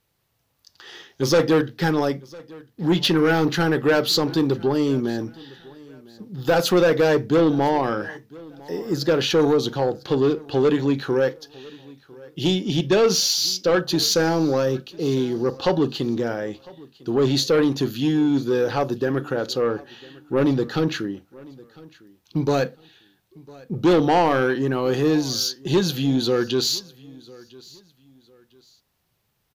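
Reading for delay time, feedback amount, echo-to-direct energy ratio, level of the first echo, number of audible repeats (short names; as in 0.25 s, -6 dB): 1.003 s, 30%, -22.5 dB, -23.0 dB, 2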